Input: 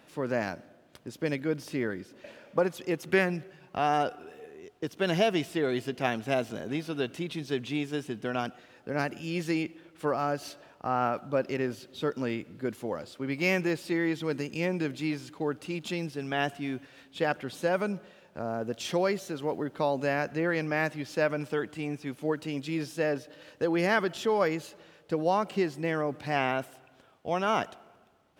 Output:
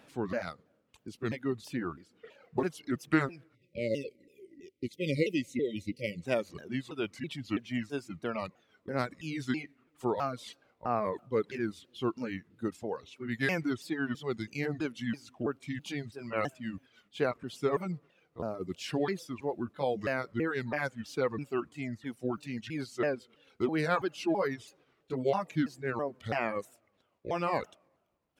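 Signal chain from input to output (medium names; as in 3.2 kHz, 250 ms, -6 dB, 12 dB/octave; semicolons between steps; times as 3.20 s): sawtooth pitch modulation -5.5 st, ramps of 329 ms; reverb removal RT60 1.7 s; spectral selection erased 3.55–6.23 s, 590–1900 Hz; trim -1 dB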